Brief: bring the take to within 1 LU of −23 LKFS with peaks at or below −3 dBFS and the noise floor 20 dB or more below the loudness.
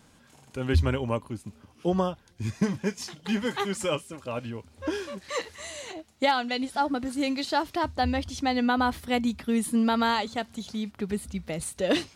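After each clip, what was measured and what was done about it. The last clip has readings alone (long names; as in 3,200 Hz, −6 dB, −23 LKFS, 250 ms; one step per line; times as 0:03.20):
integrated loudness −28.5 LKFS; sample peak −13.0 dBFS; target loudness −23.0 LKFS
→ level +5.5 dB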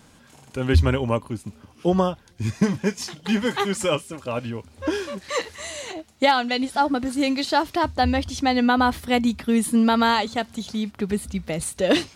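integrated loudness −23.0 LKFS; sample peak −7.5 dBFS; background noise floor −53 dBFS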